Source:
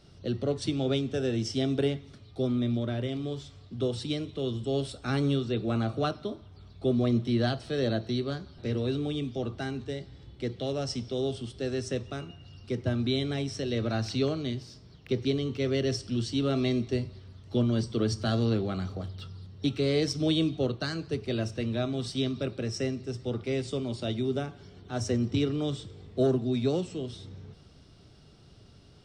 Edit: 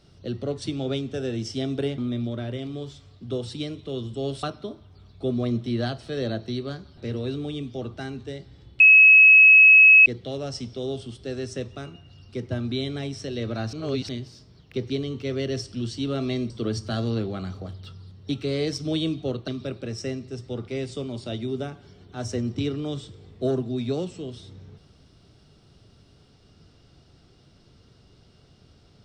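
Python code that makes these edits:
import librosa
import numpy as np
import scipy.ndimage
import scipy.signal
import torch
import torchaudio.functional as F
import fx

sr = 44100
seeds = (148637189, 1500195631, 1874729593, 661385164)

y = fx.edit(x, sr, fx.cut(start_s=1.98, length_s=0.5),
    fx.cut(start_s=4.93, length_s=1.11),
    fx.insert_tone(at_s=10.41, length_s=1.26, hz=2570.0, db=-8.5),
    fx.reverse_span(start_s=14.08, length_s=0.36),
    fx.cut(start_s=16.85, length_s=1.0),
    fx.cut(start_s=20.83, length_s=1.41), tone=tone)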